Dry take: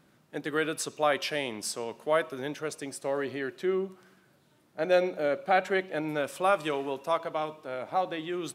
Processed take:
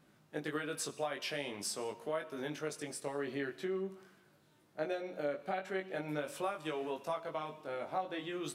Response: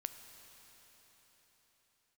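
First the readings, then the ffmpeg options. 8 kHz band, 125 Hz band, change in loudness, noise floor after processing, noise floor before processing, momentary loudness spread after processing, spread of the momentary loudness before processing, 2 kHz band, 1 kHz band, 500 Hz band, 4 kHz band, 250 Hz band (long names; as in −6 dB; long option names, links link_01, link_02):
−5.0 dB, −5.5 dB, −9.0 dB, −68 dBFS, −65 dBFS, 4 LU, 10 LU, −9.5 dB, −10.5 dB, −9.5 dB, −7.0 dB, −7.0 dB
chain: -filter_complex "[0:a]acompressor=threshold=-30dB:ratio=10,flanger=delay=19:depth=2.3:speed=0.44,asplit=2[link_01][link_02];[1:a]atrim=start_sample=2205,afade=type=out:start_time=0.26:duration=0.01,atrim=end_sample=11907[link_03];[link_02][link_03]afir=irnorm=-1:irlink=0,volume=1dB[link_04];[link_01][link_04]amix=inputs=2:normalize=0,volume=-5.5dB"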